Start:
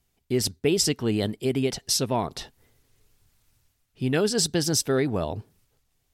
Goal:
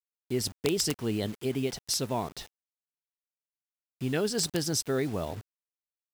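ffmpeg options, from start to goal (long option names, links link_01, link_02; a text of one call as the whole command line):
ffmpeg -i in.wav -af "aeval=exprs='(mod(3.98*val(0)+1,2)-1)/3.98':channel_layout=same,acrusher=bits=6:mix=0:aa=0.000001,volume=-5.5dB" out.wav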